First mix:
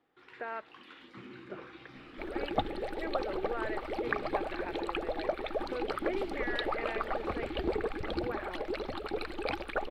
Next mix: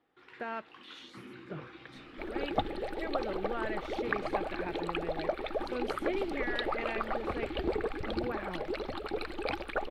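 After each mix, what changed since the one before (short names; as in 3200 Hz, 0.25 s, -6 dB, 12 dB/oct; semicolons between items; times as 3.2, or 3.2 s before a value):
speech: remove Chebyshev band-pass 380–2100 Hz, order 2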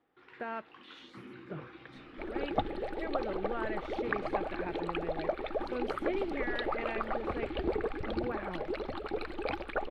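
master: add high shelf 4500 Hz -10.5 dB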